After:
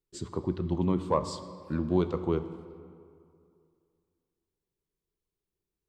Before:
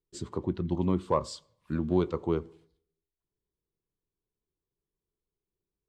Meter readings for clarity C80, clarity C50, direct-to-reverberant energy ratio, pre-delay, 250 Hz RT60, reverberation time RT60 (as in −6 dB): 12.5 dB, 11.5 dB, 11.0 dB, 30 ms, 2.4 s, 2.5 s